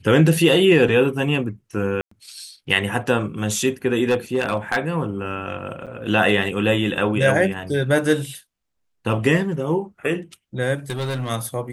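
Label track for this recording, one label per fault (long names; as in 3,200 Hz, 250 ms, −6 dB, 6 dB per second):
2.010000	2.110000	drop-out 104 ms
4.080000	4.780000	clipping −14 dBFS
5.860000	5.870000	drop-out 7.4 ms
10.900000	11.300000	clipping −21.5 dBFS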